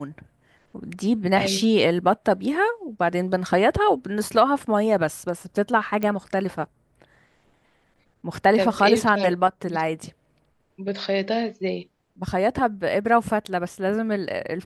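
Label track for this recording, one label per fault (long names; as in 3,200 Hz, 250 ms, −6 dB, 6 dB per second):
6.030000	6.030000	click −14 dBFS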